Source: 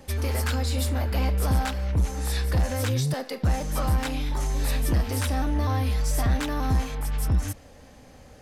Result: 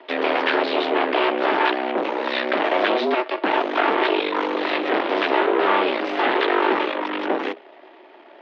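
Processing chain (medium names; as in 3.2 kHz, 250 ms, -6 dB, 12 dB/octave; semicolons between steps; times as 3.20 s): hum notches 60/120/180/240/300/360/420/480/540 Hz; Chebyshev shaper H 5 -23 dB, 7 -24 dB, 8 -10 dB, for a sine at -13.5 dBFS; mistuned SSB +110 Hz 200–3400 Hz; trim +7 dB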